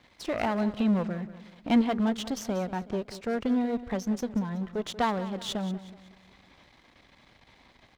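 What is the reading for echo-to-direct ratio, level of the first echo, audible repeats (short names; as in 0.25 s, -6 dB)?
-14.0 dB, -15.0 dB, 3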